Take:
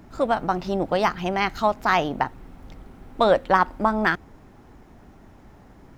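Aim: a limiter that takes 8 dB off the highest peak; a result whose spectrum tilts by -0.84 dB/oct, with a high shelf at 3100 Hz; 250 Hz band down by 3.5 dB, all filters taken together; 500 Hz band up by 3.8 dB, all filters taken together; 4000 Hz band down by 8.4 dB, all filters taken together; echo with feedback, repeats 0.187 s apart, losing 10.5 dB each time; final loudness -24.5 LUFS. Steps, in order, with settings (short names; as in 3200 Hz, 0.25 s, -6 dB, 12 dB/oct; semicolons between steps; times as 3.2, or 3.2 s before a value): bell 250 Hz -7 dB; bell 500 Hz +6.5 dB; high shelf 3100 Hz -4 dB; bell 4000 Hz -8.5 dB; limiter -11.5 dBFS; feedback echo 0.187 s, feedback 30%, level -10.5 dB; gain -0.5 dB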